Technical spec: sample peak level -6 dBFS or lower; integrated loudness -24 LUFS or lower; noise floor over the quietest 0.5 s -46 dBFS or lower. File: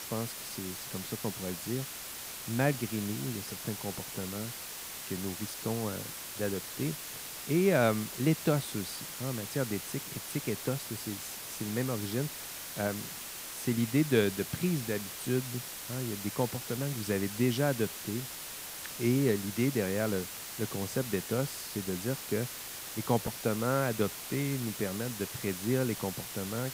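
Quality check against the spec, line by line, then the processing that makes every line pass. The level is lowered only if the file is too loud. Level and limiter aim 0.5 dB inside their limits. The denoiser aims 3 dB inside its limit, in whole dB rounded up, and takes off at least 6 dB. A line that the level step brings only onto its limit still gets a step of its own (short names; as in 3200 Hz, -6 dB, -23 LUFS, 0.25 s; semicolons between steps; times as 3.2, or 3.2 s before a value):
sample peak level -13.5 dBFS: OK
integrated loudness -33.0 LUFS: OK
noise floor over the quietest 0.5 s -42 dBFS: fail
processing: denoiser 7 dB, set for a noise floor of -42 dBFS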